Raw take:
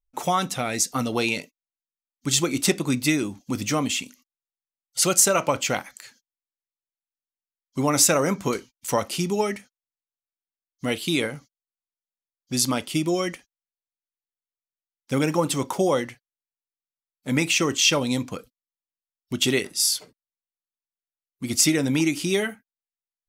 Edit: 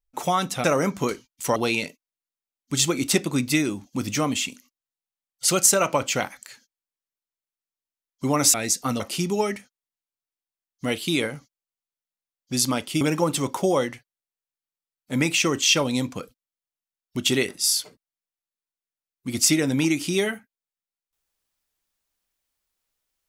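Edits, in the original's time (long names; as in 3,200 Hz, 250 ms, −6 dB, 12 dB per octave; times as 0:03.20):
0:00.64–0:01.10: swap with 0:08.08–0:09.00
0:13.01–0:15.17: remove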